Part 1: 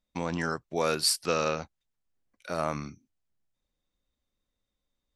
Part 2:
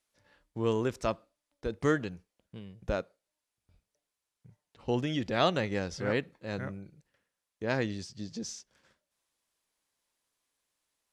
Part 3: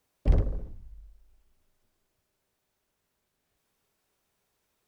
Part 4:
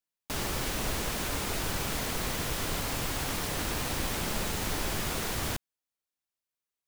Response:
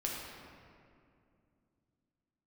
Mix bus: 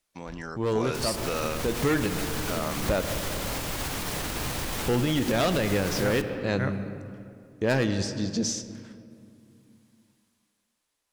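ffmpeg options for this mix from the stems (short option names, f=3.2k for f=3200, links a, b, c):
-filter_complex "[0:a]volume=-8dB[a];[1:a]asoftclip=type=hard:threshold=-25.5dB,volume=0dB,asplit=2[b][c];[c]volume=-10dB[d];[2:a]tiltshelf=f=970:g=-8,volume=-17dB[e];[3:a]alimiter=level_in=6.5dB:limit=-24dB:level=0:latency=1:release=171,volume=-6.5dB,adelay=650,volume=-1.5dB,asplit=2[f][g];[g]volume=-14.5dB[h];[4:a]atrim=start_sample=2205[i];[d][h]amix=inputs=2:normalize=0[j];[j][i]afir=irnorm=-1:irlink=0[k];[a][b][e][f][k]amix=inputs=5:normalize=0,dynaudnorm=f=160:g=13:m=9dB,alimiter=limit=-16.5dB:level=0:latency=1:release=124"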